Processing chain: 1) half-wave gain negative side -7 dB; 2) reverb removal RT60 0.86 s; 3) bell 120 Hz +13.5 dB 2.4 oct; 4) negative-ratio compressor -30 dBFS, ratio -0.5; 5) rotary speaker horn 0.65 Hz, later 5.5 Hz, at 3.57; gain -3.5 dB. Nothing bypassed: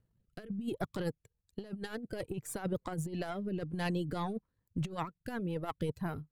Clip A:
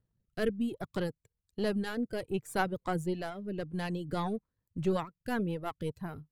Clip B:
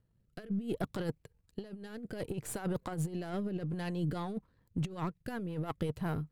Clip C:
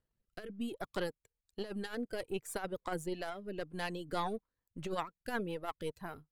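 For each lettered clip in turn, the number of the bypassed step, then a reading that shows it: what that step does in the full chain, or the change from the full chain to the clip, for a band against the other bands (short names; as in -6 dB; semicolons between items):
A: 4, momentary loudness spread change -2 LU; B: 2, 125 Hz band +3.0 dB; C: 3, 125 Hz band -10.5 dB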